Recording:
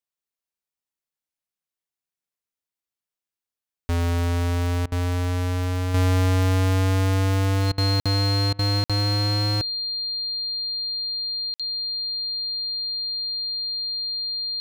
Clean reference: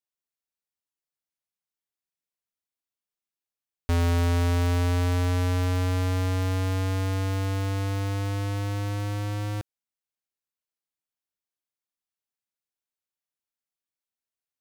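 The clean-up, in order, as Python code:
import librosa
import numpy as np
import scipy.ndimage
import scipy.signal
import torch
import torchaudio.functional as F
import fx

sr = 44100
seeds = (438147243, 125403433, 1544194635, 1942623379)

y = fx.notch(x, sr, hz=4200.0, q=30.0)
y = fx.fix_interpolate(y, sr, at_s=(8.0, 8.84, 11.54), length_ms=56.0)
y = fx.fix_interpolate(y, sr, at_s=(4.86, 7.72, 8.53), length_ms=58.0)
y = fx.gain(y, sr, db=fx.steps((0.0, 0.0), (5.94, -6.0)))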